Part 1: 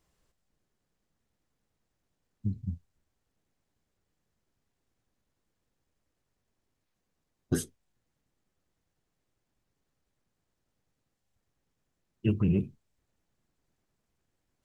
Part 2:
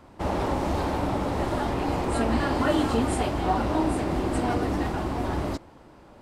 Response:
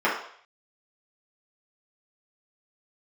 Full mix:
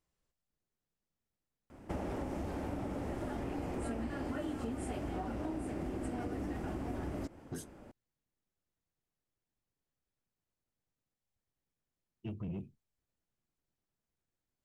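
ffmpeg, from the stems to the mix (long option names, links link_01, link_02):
-filter_complex "[0:a]asoftclip=type=tanh:threshold=-22.5dB,volume=-11dB[link_01];[1:a]equalizer=frequency=250:width_type=o:width=0.67:gain=3,equalizer=frequency=1000:width_type=o:width=0.67:gain=-7,equalizer=frequency=4000:width_type=o:width=0.67:gain=-9,adelay=1700,volume=-3.5dB[link_02];[link_01][link_02]amix=inputs=2:normalize=0,acompressor=threshold=-35dB:ratio=10"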